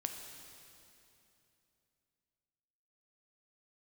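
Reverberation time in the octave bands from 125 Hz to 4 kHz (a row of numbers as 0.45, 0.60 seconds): 3.5, 3.3, 3.1, 2.8, 2.7, 2.6 seconds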